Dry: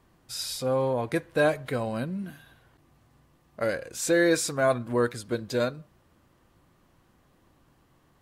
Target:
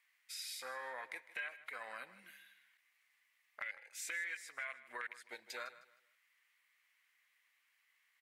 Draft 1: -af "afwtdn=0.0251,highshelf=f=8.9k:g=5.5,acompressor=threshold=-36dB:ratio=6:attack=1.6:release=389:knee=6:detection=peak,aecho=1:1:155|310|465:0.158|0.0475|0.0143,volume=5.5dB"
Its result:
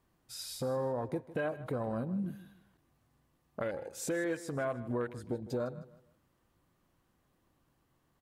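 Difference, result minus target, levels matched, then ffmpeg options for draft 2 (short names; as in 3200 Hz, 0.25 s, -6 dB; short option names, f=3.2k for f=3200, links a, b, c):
2000 Hz band -10.5 dB; compressor: peak gain reduction -7 dB
-af "afwtdn=0.0251,highpass=f=2.1k:t=q:w=5.9,highshelf=f=8.9k:g=5.5,acompressor=threshold=-44.5dB:ratio=6:attack=1.6:release=389:knee=6:detection=peak,aecho=1:1:155|310|465:0.158|0.0475|0.0143,volume=5.5dB"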